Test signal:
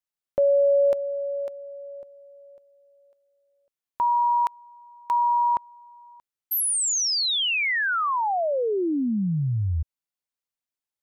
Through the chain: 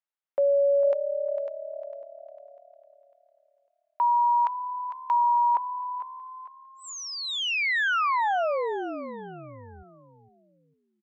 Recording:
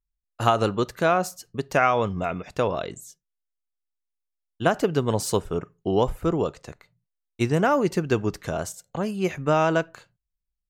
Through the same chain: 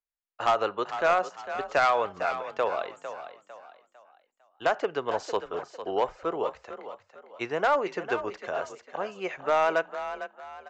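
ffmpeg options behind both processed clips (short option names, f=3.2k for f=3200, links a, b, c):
-filter_complex "[0:a]acrossover=split=440 3100:gain=0.0631 1 0.178[a][b][c];[a][b][c]amix=inputs=3:normalize=0,aresample=16000,asoftclip=type=hard:threshold=-16dB,aresample=44100,asplit=5[d][e][f][g][h];[e]adelay=452,afreqshift=36,volume=-11dB[i];[f]adelay=904,afreqshift=72,volume=-19.9dB[j];[g]adelay=1356,afreqshift=108,volume=-28.7dB[k];[h]adelay=1808,afreqshift=144,volume=-37.6dB[l];[d][i][j][k][l]amix=inputs=5:normalize=0"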